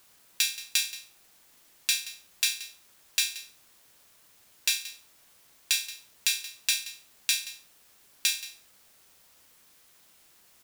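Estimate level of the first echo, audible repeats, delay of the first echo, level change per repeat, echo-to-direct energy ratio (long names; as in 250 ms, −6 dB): −16.0 dB, 1, 177 ms, repeats not evenly spaced, −16.0 dB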